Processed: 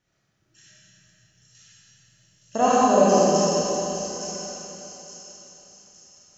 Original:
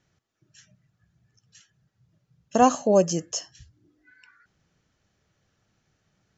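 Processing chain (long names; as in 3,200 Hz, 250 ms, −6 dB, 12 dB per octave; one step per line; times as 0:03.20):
low-shelf EQ 460 Hz −3 dB
delay with a high-pass on its return 866 ms, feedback 39%, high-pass 4,400 Hz, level −5 dB
comb and all-pass reverb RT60 3.7 s, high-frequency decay 0.95×, pre-delay 5 ms, DRR −10 dB
level −5 dB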